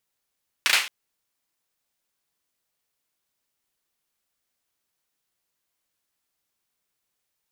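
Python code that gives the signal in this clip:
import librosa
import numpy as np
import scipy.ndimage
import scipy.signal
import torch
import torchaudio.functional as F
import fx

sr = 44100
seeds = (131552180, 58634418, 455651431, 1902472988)

y = fx.drum_clap(sr, seeds[0], length_s=0.22, bursts=3, spacing_ms=35, hz=2400.0, decay_s=0.38)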